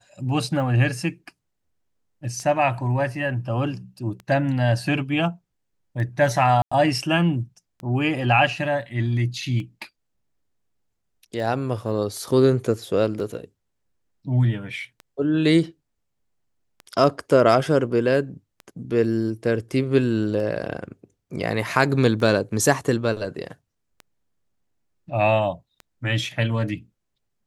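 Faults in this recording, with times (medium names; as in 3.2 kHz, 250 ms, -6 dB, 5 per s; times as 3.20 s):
tick 33 1/3 rpm -23 dBFS
6.62–6.71 s: dropout 95 ms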